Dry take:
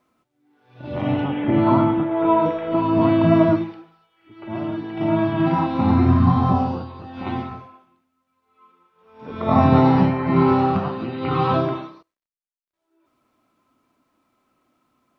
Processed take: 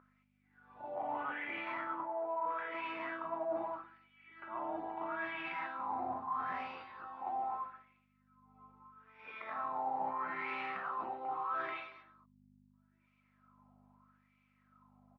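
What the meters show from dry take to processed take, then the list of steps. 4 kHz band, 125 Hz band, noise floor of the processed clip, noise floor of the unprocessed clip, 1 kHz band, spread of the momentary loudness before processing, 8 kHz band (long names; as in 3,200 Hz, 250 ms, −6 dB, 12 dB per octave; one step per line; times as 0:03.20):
−16.5 dB, below −40 dB, −74 dBFS, −78 dBFS, −14.0 dB, 14 LU, can't be measured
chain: in parallel at −4.5 dB: gain into a clipping stage and back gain 18.5 dB
on the sum: mains hum 50 Hz, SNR 12 dB
single-tap delay 229 ms −16 dB
LFO wah 0.78 Hz 750–2,400 Hz, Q 6.3
bass and treble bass −7 dB, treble +3 dB
reversed playback
downward compressor 6 to 1, threshold −39 dBFS, peak gain reduction 18 dB
reversed playback
high-shelf EQ 3,500 Hz −7 dB
level +3.5 dB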